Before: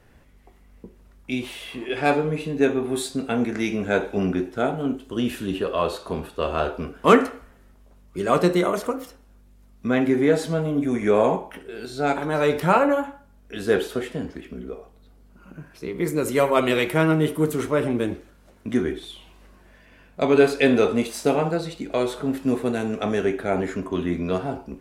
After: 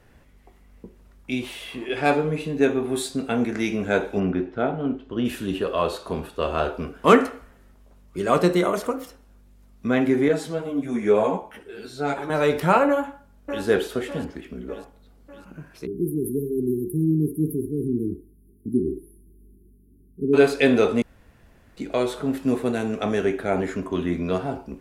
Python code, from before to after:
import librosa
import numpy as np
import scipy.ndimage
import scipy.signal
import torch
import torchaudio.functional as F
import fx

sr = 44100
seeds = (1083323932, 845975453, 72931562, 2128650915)

y = fx.air_absorb(x, sr, metres=240.0, at=(4.19, 5.24), fade=0.02)
y = fx.ensemble(y, sr, at=(10.28, 12.3))
y = fx.echo_throw(y, sr, start_s=12.88, length_s=0.76, ms=600, feedback_pct=55, wet_db=-9.0)
y = fx.brickwall_bandstop(y, sr, low_hz=440.0, high_hz=9500.0, at=(15.85, 20.33), fade=0.02)
y = fx.edit(y, sr, fx.room_tone_fill(start_s=21.02, length_s=0.75), tone=tone)